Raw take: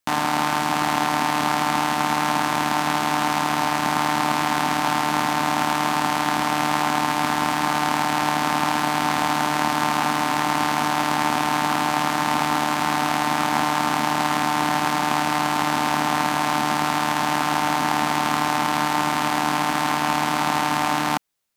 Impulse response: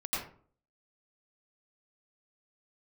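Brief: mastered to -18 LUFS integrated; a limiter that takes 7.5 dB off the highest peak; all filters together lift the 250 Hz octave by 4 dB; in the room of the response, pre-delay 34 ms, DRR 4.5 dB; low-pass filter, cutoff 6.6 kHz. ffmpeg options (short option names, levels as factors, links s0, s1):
-filter_complex "[0:a]lowpass=6600,equalizer=f=250:t=o:g=5,alimiter=limit=0.282:level=0:latency=1,asplit=2[s0][s1];[1:a]atrim=start_sample=2205,adelay=34[s2];[s1][s2]afir=irnorm=-1:irlink=0,volume=0.316[s3];[s0][s3]amix=inputs=2:normalize=0,volume=1.88"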